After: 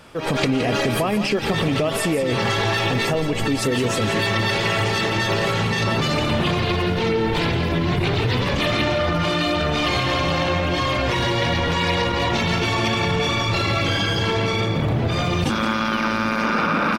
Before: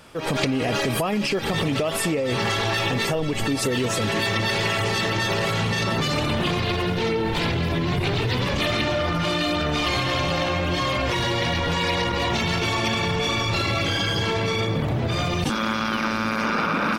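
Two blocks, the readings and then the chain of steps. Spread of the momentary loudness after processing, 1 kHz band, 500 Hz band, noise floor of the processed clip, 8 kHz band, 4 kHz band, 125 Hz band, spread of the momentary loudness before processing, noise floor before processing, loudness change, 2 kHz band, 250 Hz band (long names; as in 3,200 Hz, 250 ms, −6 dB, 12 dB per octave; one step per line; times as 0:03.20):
1 LU, +2.5 dB, +3.0 dB, −23 dBFS, 0.0 dB, +1.5 dB, +3.0 dB, 2 LU, −25 dBFS, +2.5 dB, +2.0 dB, +3.0 dB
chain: high-shelf EQ 4,900 Hz −4.5 dB
on a send: single-tap delay 169 ms −10.5 dB
on the sum: level +2.5 dB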